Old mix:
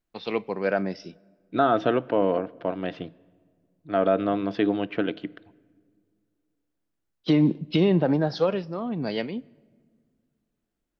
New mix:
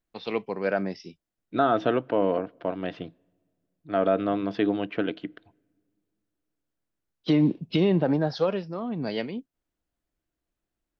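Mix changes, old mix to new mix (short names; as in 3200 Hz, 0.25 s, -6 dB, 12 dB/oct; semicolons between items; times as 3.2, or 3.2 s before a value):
first voice: send off; second voice: send -10.5 dB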